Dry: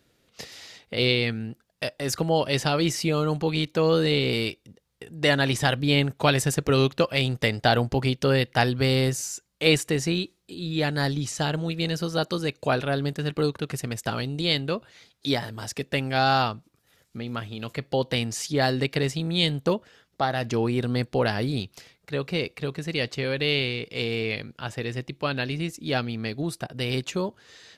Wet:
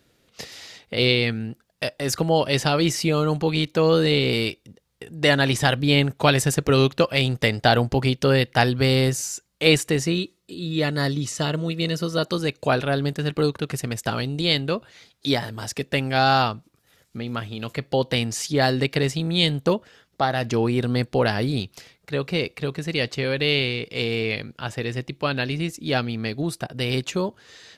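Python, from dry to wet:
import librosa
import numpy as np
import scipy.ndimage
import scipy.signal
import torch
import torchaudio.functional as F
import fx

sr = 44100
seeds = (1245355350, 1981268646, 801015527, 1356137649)

y = fx.notch_comb(x, sr, f0_hz=800.0, at=(10.03, 12.25))
y = F.gain(torch.from_numpy(y), 3.0).numpy()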